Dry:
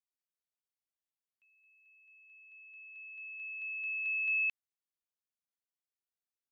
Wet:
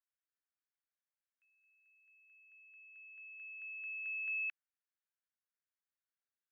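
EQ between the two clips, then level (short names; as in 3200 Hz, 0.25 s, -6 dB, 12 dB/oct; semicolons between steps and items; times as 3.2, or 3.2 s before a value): band-pass 1600 Hz, Q 3; +3.5 dB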